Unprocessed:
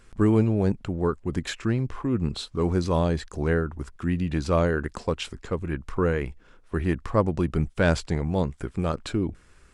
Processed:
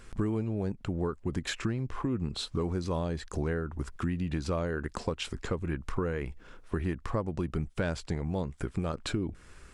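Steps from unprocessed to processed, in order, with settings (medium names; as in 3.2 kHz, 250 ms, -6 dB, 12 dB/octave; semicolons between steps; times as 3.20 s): compression 6:1, threshold -32 dBFS, peak gain reduction 16 dB; trim +3.5 dB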